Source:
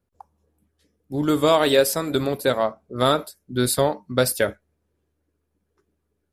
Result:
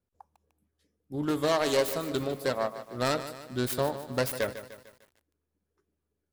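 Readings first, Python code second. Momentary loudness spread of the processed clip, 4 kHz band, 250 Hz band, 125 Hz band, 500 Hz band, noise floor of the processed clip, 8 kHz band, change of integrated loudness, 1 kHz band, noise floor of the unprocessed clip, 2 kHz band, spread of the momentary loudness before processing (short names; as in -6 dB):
9 LU, -9.0 dB, -8.5 dB, -8.0 dB, -8.5 dB, -83 dBFS, -10.5 dB, -8.5 dB, -8.5 dB, -75 dBFS, -7.0 dB, 8 LU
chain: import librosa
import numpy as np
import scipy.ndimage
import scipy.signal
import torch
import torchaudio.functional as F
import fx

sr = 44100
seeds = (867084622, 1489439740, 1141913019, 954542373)

y = fx.self_delay(x, sr, depth_ms=0.2)
y = fx.echo_crushed(y, sr, ms=150, feedback_pct=55, bits=7, wet_db=-12)
y = y * librosa.db_to_amplitude(-8.0)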